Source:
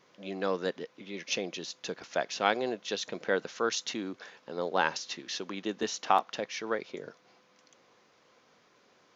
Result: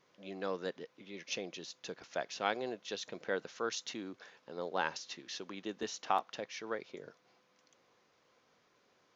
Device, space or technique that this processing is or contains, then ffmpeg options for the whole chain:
low shelf boost with a cut just above: -af "lowshelf=f=110:g=5,equalizer=f=210:t=o:w=0.77:g=-2,volume=0.447"

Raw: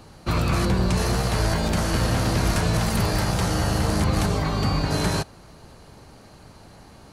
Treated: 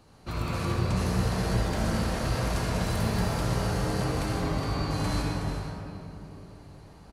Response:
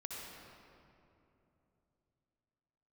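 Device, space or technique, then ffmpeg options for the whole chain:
cave: -filter_complex "[0:a]aecho=1:1:369:0.376[s0];[1:a]atrim=start_sample=2205[s1];[s0][s1]afir=irnorm=-1:irlink=0,volume=0.531"

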